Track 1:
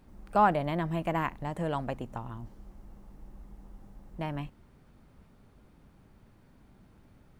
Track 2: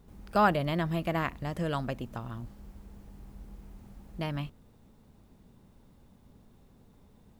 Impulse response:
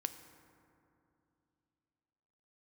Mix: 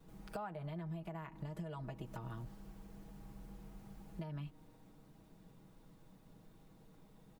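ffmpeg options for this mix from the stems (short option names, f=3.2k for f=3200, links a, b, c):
-filter_complex "[0:a]highpass=200,volume=-16dB,asplit=3[a][b][c];[b]volume=-8.5dB[d];[1:a]acrossover=split=450[e][f];[f]acompressor=threshold=-43dB:ratio=6[g];[e][g]amix=inputs=2:normalize=0,adelay=3.1,volume=-3dB[h];[c]apad=whole_len=326292[i];[h][i]sidechaincompress=threshold=-51dB:ratio=8:attack=16:release=151[j];[2:a]atrim=start_sample=2205[k];[d][k]afir=irnorm=-1:irlink=0[l];[a][j][l]amix=inputs=3:normalize=0,equalizer=f=62:t=o:w=0.85:g=-11.5,aecho=1:1:6.3:0.55,acompressor=threshold=-41dB:ratio=6"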